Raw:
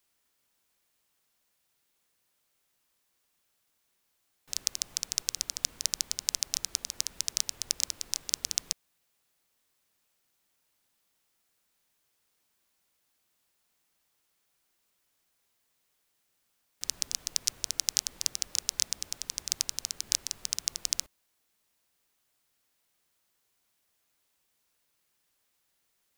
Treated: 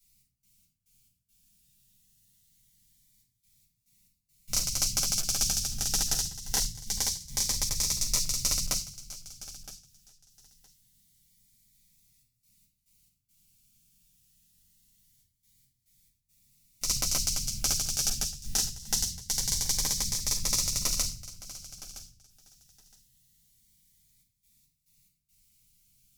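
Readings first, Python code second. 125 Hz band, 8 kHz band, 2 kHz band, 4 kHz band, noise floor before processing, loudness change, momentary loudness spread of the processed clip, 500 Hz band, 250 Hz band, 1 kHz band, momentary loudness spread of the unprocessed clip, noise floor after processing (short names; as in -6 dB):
+19.5 dB, +4.0 dB, +3.0 dB, +2.0 dB, -76 dBFS, +3.5 dB, 16 LU, +11.0 dB, +14.5 dB, +11.0 dB, 5 LU, -79 dBFS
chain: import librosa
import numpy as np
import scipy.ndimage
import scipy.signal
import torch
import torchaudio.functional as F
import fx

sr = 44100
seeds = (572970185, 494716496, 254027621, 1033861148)

p1 = fx.band_shelf(x, sr, hz=670.0, db=-14.0, octaves=2.7)
p2 = fx.over_compress(p1, sr, threshold_db=-30.0, ratio=-0.5)
p3 = fx.step_gate(p2, sr, bpm=70, pattern='x.x.x.xxxxxxxx', floor_db=-24.0, edge_ms=4.5)
p4 = fx.bass_treble(p3, sr, bass_db=13, treble_db=9)
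p5 = fx.room_shoebox(p4, sr, seeds[0], volume_m3=440.0, walls='furnished', distance_m=7.4)
p6 = fx.clip_asym(p5, sr, top_db=-16.0, bottom_db=-0.5)
p7 = p6 + fx.echo_feedback(p6, sr, ms=966, feedback_pct=16, wet_db=-16.0, dry=0)
p8 = fx.notch_cascade(p7, sr, direction='rising', hz=0.24)
y = p8 * librosa.db_to_amplitude(-8.5)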